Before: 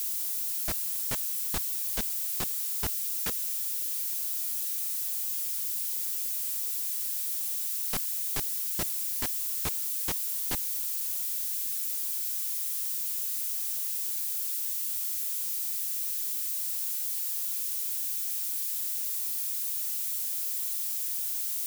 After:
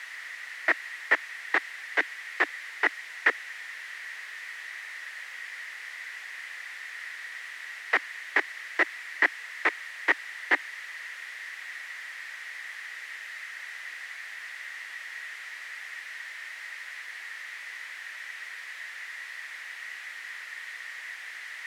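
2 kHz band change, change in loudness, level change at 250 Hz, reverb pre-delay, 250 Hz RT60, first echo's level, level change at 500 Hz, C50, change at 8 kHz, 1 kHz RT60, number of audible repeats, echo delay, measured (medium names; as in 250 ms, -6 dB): +20.5 dB, -4.0 dB, +1.5 dB, no reverb, no reverb, no echo, +8.0 dB, no reverb, -18.5 dB, no reverb, no echo, no echo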